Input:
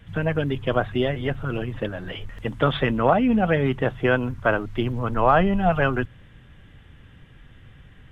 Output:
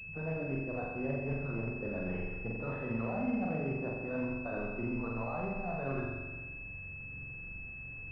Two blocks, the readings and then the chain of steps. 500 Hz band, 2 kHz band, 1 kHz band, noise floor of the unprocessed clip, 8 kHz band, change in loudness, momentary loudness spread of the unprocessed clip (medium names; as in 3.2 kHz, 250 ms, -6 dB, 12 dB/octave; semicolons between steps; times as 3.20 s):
-14.5 dB, -12.5 dB, -18.5 dB, -50 dBFS, no reading, -14.5 dB, 12 LU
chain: coarse spectral quantiser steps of 15 dB; peak limiter -13 dBFS, peak gain reduction 6.5 dB; reverse; compression 6:1, threshold -31 dBFS, peak gain reduction 13 dB; reverse; flutter echo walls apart 7.5 m, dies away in 1.3 s; class-D stage that switches slowly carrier 2.6 kHz; trim -5.5 dB